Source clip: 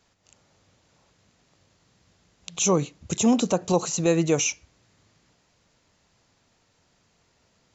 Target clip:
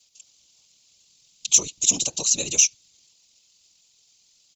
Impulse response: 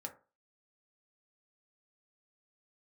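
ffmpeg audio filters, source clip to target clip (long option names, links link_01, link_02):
-af "afftfilt=real='hypot(re,im)*cos(2*PI*random(0))':imag='hypot(re,im)*sin(2*PI*random(1))':win_size=512:overlap=0.75,aexciter=amount=12.9:drive=6:freq=2600,atempo=1.7,volume=-7.5dB"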